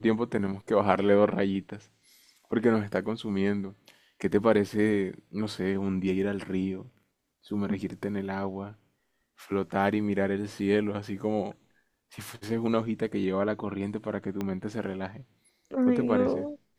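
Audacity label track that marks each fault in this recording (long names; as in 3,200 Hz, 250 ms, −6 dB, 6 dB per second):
14.410000	14.410000	click −19 dBFS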